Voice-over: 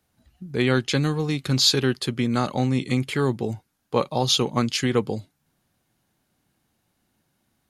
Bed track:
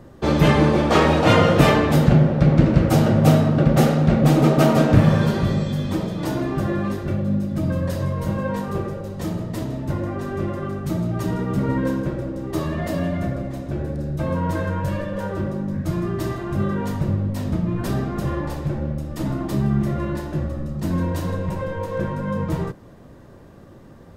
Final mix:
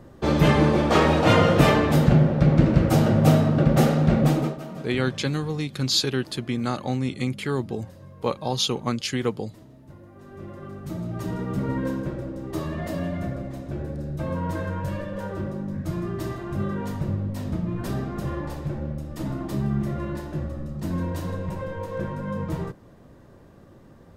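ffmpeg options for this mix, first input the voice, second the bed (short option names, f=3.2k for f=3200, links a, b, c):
-filter_complex "[0:a]adelay=4300,volume=-3.5dB[a];[1:a]volume=14dB,afade=t=out:st=4.2:d=0.39:silence=0.112202,afade=t=in:st=10.12:d=1.32:silence=0.149624[b];[a][b]amix=inputs=2:normalize=0"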